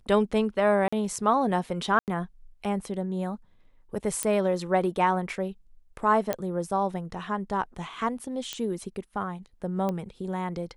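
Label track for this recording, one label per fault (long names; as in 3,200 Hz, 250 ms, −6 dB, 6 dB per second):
0.880000	0.930000	drop-out 45 ms
1.990000	2.080000	drop-out 88 ms
4.230000	4.230000	click −11 dBFS
6.330000	6.330000	click −12 dBFS
8.530000	8.530000	click −15 dBFS
9.890000	9.890000	click −18 dBFS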